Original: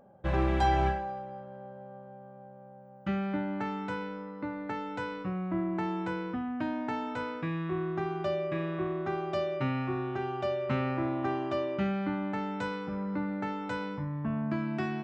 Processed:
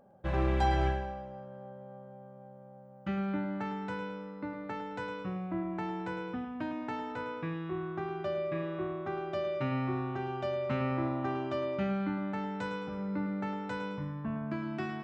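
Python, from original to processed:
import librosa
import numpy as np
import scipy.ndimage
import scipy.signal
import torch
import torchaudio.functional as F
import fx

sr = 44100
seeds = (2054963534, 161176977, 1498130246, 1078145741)

y = fx.high_shelf(x, sr, hz=5100.0, db=-7.5, at=(7.12, 9.45))
y = fx.echo_feedback(y, sr, ms=107, feedback_pct=40, wet_db=-10.0)
y = y * 10.0 ** (-3.0 / 20.0)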